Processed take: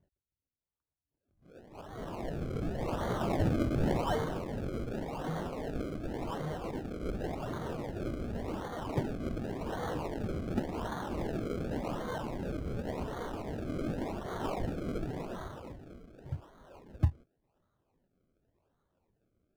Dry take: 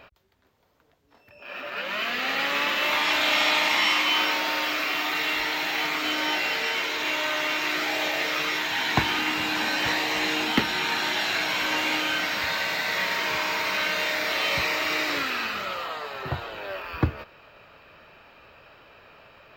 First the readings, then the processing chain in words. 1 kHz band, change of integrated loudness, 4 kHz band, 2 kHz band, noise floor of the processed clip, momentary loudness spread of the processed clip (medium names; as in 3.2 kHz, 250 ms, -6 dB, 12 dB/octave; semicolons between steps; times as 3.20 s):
-12.5 dB, -12.0 dB, -27.0 dB, -24.5 dB, under -85 dBFS, 12 LU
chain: peaking EQ 540 Hz -14 dB 2.7 oct; decimation with a swept rate 33×, swing 100% 0.89 Hz; spectral contrast expander 1.5:1